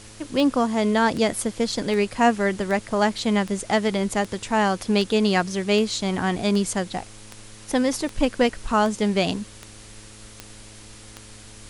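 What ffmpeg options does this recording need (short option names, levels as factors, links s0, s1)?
-af "adeclick=t=4,bandreject=f=106.9:t=h:w=4,bandreject=f=213.8:t=h:w=4,bandreject=f=320.7:t=h:w=4,bandreject=f=427.6:t=h:w=4,bandreject=f=534.5:t=h:w=4,afftdn=nr=24:nf=-44"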